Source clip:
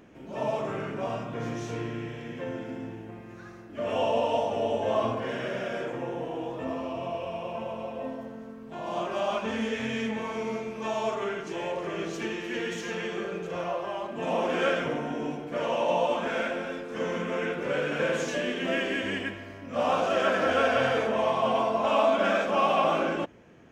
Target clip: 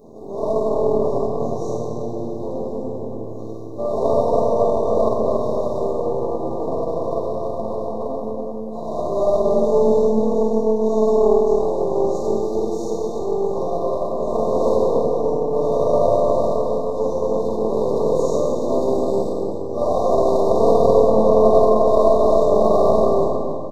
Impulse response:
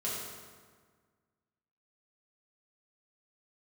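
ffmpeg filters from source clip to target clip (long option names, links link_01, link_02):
-filter_complex "[1:a]atrim=start_sample=2205[link_01];[0:a][link_01]afir=irnorm=-1:irlink=0,acrossover=split=4100[link_02][link_03];[link_02]aeval=exprs='max(val(0),0)':channel_layout=same[link_04];[link_04][link_03]amix=inputs=2:normalize=0,equalizer=frequency=500:width=0.6:gain=13,afftfilt=real='re*(1-between(b*sr/4096,1200,3600))':imag='im*(1-between(b*sr/4096,1200,3600))':win_size=4096:overlap=0.75,equalizer=frequency=1300:width=0.33:gain=-6,asplit=2[link_05][link_06];[link_06]acompressor=threshold=-38dB:ratio=6,volume=-1dB[link_07];[link_05][link_07]amix=inputs=2:normalize=0,bandreject=frequency=50:width_type=h:width=6,bandreject=frequency=100:width_type=h:width=6,bandreject=frequency=150:width_type=h:width=6,bandreject=frequency=200:width_type=h:width=6,bandreject=frequency=250:width_type=h:width=6,bandreject=frequency=300:width_type=h:width=6,bandreject=frequency=350:width_type=h:width=6,asplit=2[link_08][link_09];[link_09]adelay=285,lowpass=frequency=2000:poles=1,volume=-4dB,asplit=2[link_10][link_11];[link_11]adelay=285,lowpass=frequency=2000:poles=1,volume=0.32,asplit=2[link_12][link_13];[link_13]adelay=285,lowpass=frequency=2000:poles=1,volume=0.32,asplit=2[link_14][link_15];[link_15]adelay=285,lowpass=frequency=2000:poles=1,volume=0.32[link_16];[link_08][link_10][link_12][link_14][link_16]amix=inputs=5:normalize=0"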